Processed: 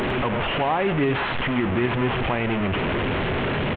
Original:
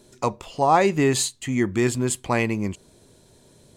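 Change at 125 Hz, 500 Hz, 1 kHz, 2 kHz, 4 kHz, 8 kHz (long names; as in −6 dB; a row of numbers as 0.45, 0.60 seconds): +2.5 dB, 0.0 dB, −1.5 dB, +5.0 dB, +3.0 dB, below −35 dB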